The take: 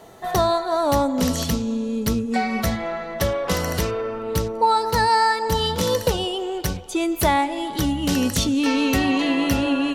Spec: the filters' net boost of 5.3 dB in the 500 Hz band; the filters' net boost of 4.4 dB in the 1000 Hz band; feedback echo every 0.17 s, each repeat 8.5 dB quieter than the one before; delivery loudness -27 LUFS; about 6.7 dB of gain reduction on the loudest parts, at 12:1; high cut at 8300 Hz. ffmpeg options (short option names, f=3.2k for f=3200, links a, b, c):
-af "lowpass=8.3k,equalizer=f=500:t=o:g=5.5,equalizer=f=1k:t=o:g=3.5,acompressor=threshold=-16dB:ratio=12,aecho=1:1:170|340|510|680:0.376|0.143|0.0543|0.0206,volume=-6dB"